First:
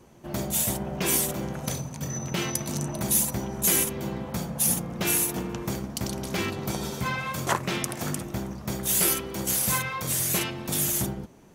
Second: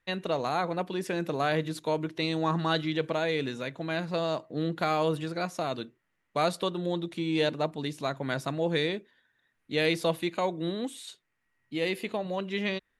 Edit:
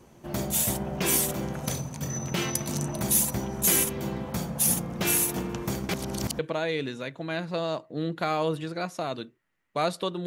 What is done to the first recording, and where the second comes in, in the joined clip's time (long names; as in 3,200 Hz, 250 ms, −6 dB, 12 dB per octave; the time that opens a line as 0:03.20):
first
0:05.89–0:06.39: reverse
0:06.39: continue with second from 0:02.99